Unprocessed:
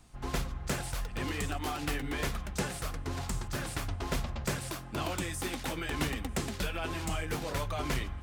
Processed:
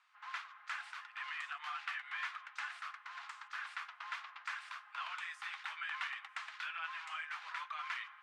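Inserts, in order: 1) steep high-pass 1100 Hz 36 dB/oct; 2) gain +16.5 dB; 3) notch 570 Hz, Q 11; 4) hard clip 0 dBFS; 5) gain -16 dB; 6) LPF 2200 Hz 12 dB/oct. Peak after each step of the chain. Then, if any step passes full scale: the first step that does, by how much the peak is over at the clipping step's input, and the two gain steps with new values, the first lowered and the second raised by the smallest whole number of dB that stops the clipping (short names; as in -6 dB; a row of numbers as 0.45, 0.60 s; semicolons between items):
-21.5, -5.0, -5.0, -5.0, -21.0, -27.0 dBFS; no overload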